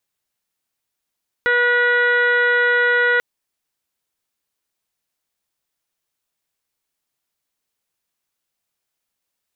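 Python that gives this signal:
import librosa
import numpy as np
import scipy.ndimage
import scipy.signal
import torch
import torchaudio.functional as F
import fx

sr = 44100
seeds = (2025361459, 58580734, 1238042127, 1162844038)

y = fx.additive_steady(sr, length_s=1.74, hz=485.0, level_db=-20, upper_db=(-9.5, 4.0, 1.0, -16.0, -17.5, -17.0, -19))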